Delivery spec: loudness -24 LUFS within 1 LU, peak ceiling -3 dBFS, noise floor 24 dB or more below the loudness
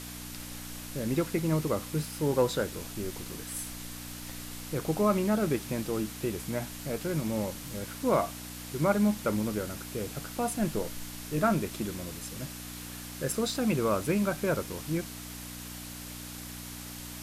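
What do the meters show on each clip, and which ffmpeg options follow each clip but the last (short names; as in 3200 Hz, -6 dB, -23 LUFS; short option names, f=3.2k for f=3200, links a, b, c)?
hum 60 Hz; harmonics up to 300 Hz; hum level -42 dBFS; noise floor -42 dBFS; noise floor target -56 dBFS; loudness -32.0 LUFS; peak -13.0 dBFS; loudness target -24.0 LUFS
-> -af "bandreject=f=60:t=h:w=4,bandreject=f=120:t=h:w=4,bandreject=f=180:t=h:w=4,bandreject=f=240:t=h:w=4,bandreject=f=300:t=h:w=4"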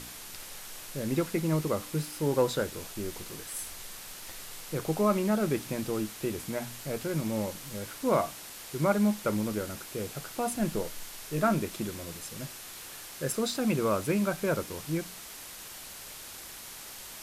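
hum none; noise floor -45 dBFS; noise floor target -56 dBFS
-> -af "afftdn=nr=11:nf=-45"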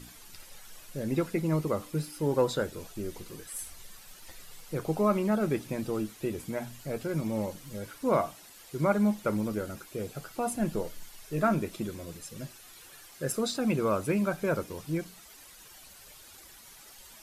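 noise floor -52 dBFS; noise floor target -56 dBFS
-> -af "afftdn=nr=6:nf=-52"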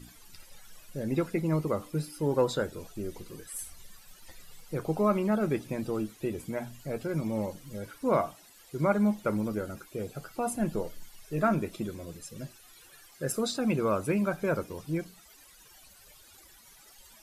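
noise floor -56 dBFS; loudness -31.5 LUFS; peak -13.5 dBFS; loudness target -24.0 LUFS
-> -af "volume=7.5dB"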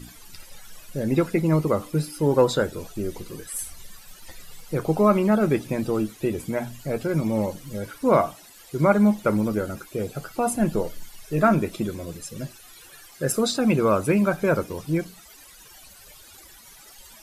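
loudness -24.0 LUFS; peak -6.0 dBFS; noise floor -48 dBFS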